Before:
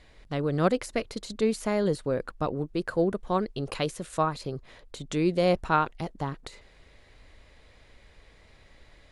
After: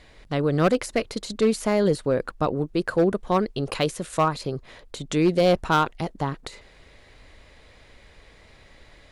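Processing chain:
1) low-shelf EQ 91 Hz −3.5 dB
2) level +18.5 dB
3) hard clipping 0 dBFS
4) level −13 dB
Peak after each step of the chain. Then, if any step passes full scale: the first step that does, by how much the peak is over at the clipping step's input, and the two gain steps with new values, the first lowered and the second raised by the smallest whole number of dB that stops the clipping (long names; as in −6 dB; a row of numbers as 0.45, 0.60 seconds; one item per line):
−10.5, +8.0, 0.0, −13.0 dBFS
step 2, 8.0 dB
step 2 +10.5 dB, step 4 −5 dB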